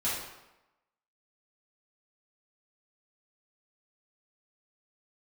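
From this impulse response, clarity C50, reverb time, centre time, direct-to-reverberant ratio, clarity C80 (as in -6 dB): 0.5 dB, 0.95 s, 63 ms, -10.5 dB, 4.0 dB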